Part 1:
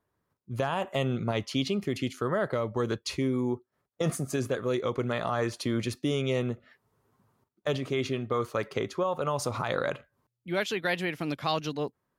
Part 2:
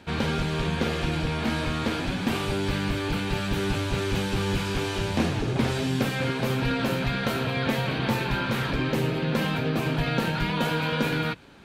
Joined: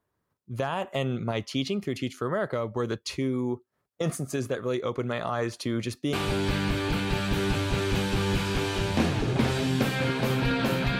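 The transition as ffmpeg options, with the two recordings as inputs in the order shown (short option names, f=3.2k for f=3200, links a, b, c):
-filter_complex "[0:a]apad=whole_dur=10.99,atrim=end=10.99,atrim=end=6.132[a];[1:a]atrim=start=2.328:end=7.19[b];[a][b]acrossfade=d=0.004:c1=hsin:c2=hsin"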